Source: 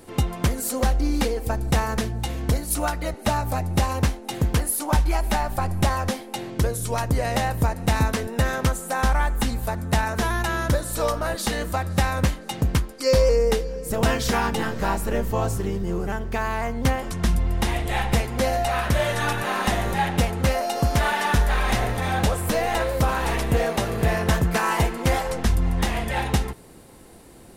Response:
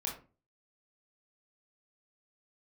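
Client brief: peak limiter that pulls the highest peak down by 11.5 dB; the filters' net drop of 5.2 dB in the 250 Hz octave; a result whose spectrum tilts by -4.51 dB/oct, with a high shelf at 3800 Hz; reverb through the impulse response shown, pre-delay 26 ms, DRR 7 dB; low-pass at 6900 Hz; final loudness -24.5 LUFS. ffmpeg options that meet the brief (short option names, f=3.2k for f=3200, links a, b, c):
-filter_complex "[0:a]lowpass=6.9k,equalizer=f=250:t=o:g=-7.5,highshelf=f=3.8k:g=4,alimiter=limit=-21dB:level=0:latency=1,asplit=2[a][b];[1:a]atrim=start_sample=2205,adelay=26[c];[b][c]afir=irnorm=-1:irlink=0,volume=-9dB[d];[a][d]amix=inputs=2:normalize=0,volume=5dB"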